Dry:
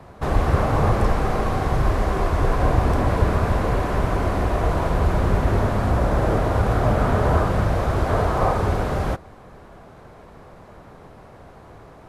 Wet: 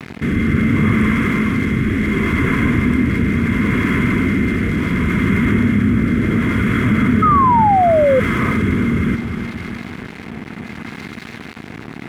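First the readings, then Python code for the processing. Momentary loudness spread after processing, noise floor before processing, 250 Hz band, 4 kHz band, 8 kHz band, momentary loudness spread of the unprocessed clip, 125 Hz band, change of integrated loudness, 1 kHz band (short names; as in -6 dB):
19 LU, -45 dBFS, +12.0 dB, +5.5 dB, n/a, 3 LU, +3.0 dB, +5.5 dB, +5.5 dB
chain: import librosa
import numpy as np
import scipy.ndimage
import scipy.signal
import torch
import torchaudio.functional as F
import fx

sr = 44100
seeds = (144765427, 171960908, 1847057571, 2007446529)

p1 = fx.fixed_phaser(x, sr, hz=1900.0, stages=4)
p2 = fx.rotary(p1, sr, hz=0.7)
p3 = fx.peak_eq(p2, sr, hz=2200.0, db=7.0, octaves=1.9)
p4 = fx.small_body(p3, sr, hz=(230.0, 2100.0, 3300.0), ring_ms=40, db=15)
p5 = p4 + fx.echo_feedback(p4, sr, ms=307, feedback_pct=49, wet_db=-13.0, dry=0)
p6 = np.sign(p5) * np.maximum(np.abs(p5) - 10.0 ** (-41.5 / 20.0), 0.0)
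p7 = fx.peak_eq(p6, sr, hz=560.0, db=-11.0, octaves=0.39)
p8 = fx.spec_paint(p7, sr, seeds[0], shape='fall', start_s=7.22, length_s=0.98, low_hz=500.0, high_hz=1300.0, level_db=-13.0)
p9 = scipy.signal.sosfilt(scipy.signal.butter(2, 88.0, 'highpass', fs=sr, output='sos'), p8)
y = fx.env_flatten(p9, sr, amount_pct=50)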